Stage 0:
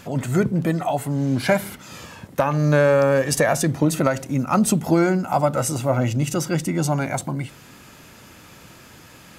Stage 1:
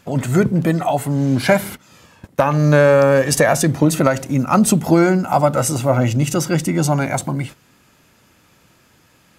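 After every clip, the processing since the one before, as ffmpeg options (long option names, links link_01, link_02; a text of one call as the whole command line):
ffmpeg -i in.wav -af "agate=range=-13dB:threshold=-35dB:ratio=16:detection=peak,volume=4.5dB" out.wav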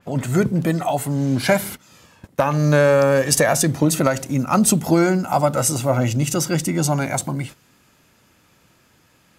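ffmpeg -i in.wav -af "adynamicequalizer=threshold=0.0251:dfrequency=3400:dqfactor=0.7:tfrequency=3400:tqfactor=0.7:attack=5:release=100:ratio=0.375:range=2.5:mode=boostabove:tftype=highshelf,volume=-3dB" out.wav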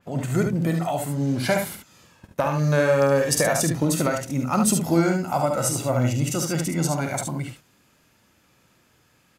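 ffmpeg -i in.wav -af "aecho=1:1:48|72:0.335|0.531,volume=-5.5dB" out.wav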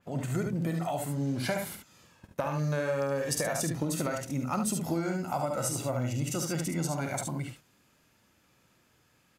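ffmpeg -i in.wav -af "acompressor=threshold=-21dB:ratio=6,volume=-5.5dB" out.wav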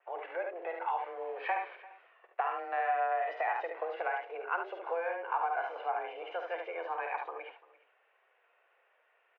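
ffmpeg -i in.wav -af "aecho=1:1:344:0.0944,highpass=frequency=340:width_type=q:width=0.5412,highpass=frequency=340:width_type=q:width=1.307,lowpass=frequency=2500:width_type=q:width=0.5176,lowpass=frequency=2500:width_type=q:width=0.7071,lowpass=frequency=2500:width_type=q:width=1.932,afreqshift=170" out.wav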